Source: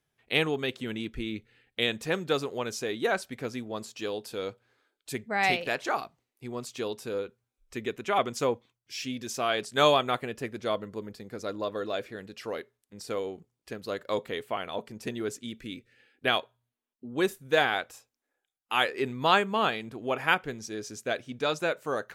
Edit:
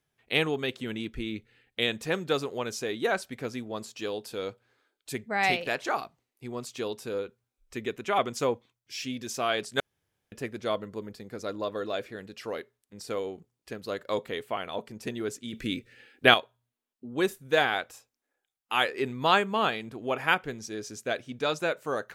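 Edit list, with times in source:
9.80–10.32 s: room tone
15.53–16.34 s: gain +8 dB

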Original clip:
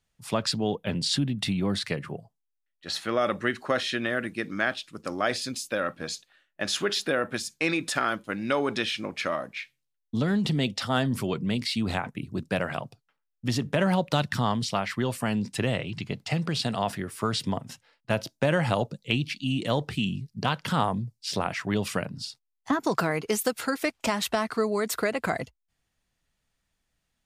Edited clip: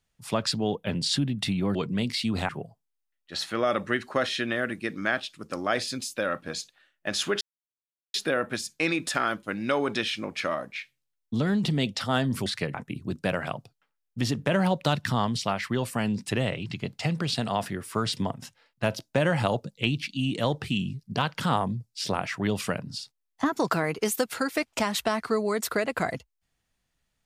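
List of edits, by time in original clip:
1.75–2.03 s: swap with 11.27–12.01 s
6.95 s: insert silence 0.73 s

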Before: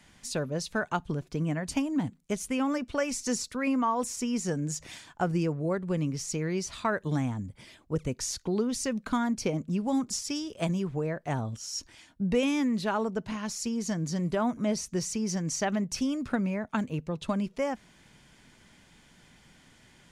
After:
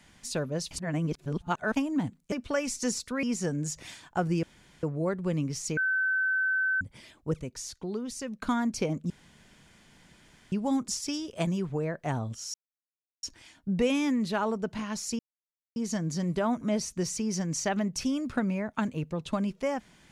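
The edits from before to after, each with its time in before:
0.71–1.76 s: reverse
2.32–2.76 s: delete
3.67–4.27 s: delete
5.47 s: insert room tone 0.40 s
6.41–7.45 s: bleep 1.53 kHz -24 dBFS
8.05–9.06 s: gain -6 dB
9.74 s: insert room tone 1.42 s
11.76 s: insert silence 0.69 s
13.72 s: insert silence 0.57 s

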